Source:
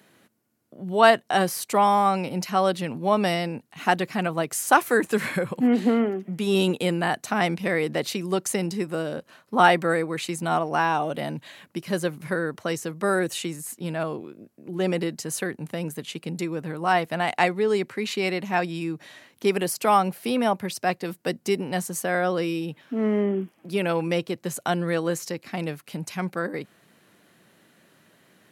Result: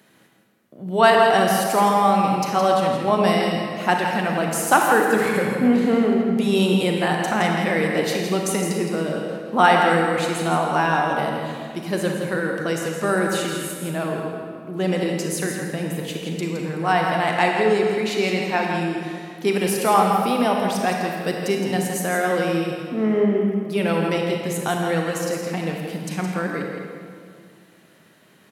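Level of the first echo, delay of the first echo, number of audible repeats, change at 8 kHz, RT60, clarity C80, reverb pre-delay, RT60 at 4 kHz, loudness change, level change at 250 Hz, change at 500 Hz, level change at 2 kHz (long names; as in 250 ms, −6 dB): −7.0 dB, 165 ms, 1, +3.5 dB, 2.2 s, 1.5 dB, 32 ms, 1.4 s, +4.0 dB, +4.5 dB, +4.0 dB, +4.0 dB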